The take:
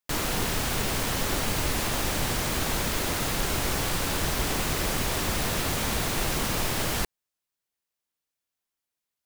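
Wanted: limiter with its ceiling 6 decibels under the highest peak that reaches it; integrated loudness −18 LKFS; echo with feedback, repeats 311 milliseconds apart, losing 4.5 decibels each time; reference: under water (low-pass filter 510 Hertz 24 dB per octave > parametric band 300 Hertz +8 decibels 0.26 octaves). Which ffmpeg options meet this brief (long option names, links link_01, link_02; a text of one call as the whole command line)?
ffmpeg -i in.wav -af "alimiter=limit=-19.5dB:level=0:latency=1,lowpass=frequency=510:width=0.5412,lowpass=frequency=510:width=1.3066,equalizer=frequency=300:width_type=o:width=0.26:gain=8,aecho=1:1:311|622|933|1244|1555|1866|2177|2488|2799:0.596|0.357|0.214|0.129|0.0772|0.0463|0.0278|0.0167|0.01,volume=14.5dB" out.wav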